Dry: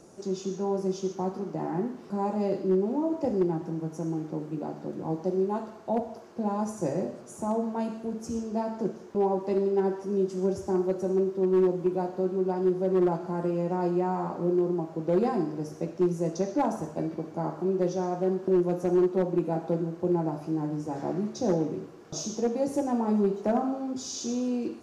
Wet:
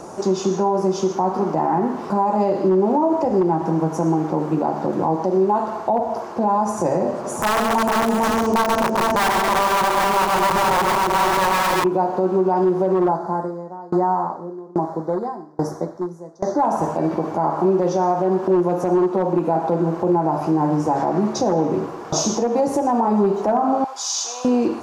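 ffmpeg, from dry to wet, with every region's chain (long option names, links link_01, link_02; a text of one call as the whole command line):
ffmpeg -i in.wav -filter_complex "[0:a]asettb=1/sr,asplit=3[link_01][link_02][link_03];[link_01]atrim=end=7.114[link_04];[link_02]atrim=start=7.11:end=11.84,asetpts=PTS-STARTPTS,afade=type=in:duration=0.004:curve=qsin,afade=type=out:start_time=4.726:duration=0.004:curve=qsin,aeval=exprs='(mod(13.3*val(0)+1,2)-1)/13.3':channel_layout=same,aecho=1:1:134|230|452|636|809:0.596|0.2|0.596|0.2|0.501,atrim=end_sample=208593[link_05];[link_03]atrim=start=11.836[link_06];[link_04][link_05]acrossfade=duration=0.004:curve1=hsin:curve2=qsin[link_07];[link_07][link_06]acrossfade=duration=0.004:curve1=qsin:curve2=hsin,asettb=1/sr,asplit=3[link_08][link_09][link_10];[link_08]atrim=end=13.094[link_11];[link_09]atrim=start=13.09:end=16.62,asetpts=PTS-STARTPTS,afade=type=in:duration=0.004:curve=qsin,afade=type=out:start_time=3.526:duration=0.004:curve=qsin,asuperstop=centerf=2700:order=4:qfactor=1.5,aeval=exprs='val(0)*pow(10,-31*if(lt(mod(1.2*n/s,1),2*abs(1.2)/1000),1-mod(1.2*n/s,1)/(2*abs(1.2)/1000),(mod(1.2*n/s,1)-2*abs(1.2)/1000)/(1-2*abs(1.2)/1000))/20)':channel_layout=same[link_12];[link_10]atrim=start=16.616[link_13];[link_11][link_12]acrossfade=duration=0.004:curve1=hsin:curve2=qsin[link_14];[link_14][link_13]acrossfade=duration=0.004:curve1=qsin:curve2=hsin,asettb=1/sr,asplit=3[link_15][link_16][link_17];[link_15]atrim=end=23.844[link_18];[link_16]atrim=start=23.84:end=24.45,asetpts=PTS-STARTPTS,afade=type=in:duration=0.004:curve=qsin,afade=type=out:start_time=0.606:duration=0.004:curve=qsin,highpass=frequency=790:width=0.5412,highpass=frequency=790:width=1.3066,equalizer=frequency=1400:width_type=o:width=2:gain=-5[link_19];[link_17]atrim=start=24.446[link_20];[link_18][link_19]acrossfade=duration=0.004:curve1=hsin:curve2=qsin[link_21];[link_21][link_20]acrossfade=duration=0.004:curve1=qsin:curve2=hsin,equalizer=frequency=930:width_type=o:width=1.2:gain=12.5,acompressor=threshold=-28dB:ratio=2.5,alimiter=level_in=22dB:limit=-1dB:release=50:level=0:latency=1,volume=-9dB" out.wav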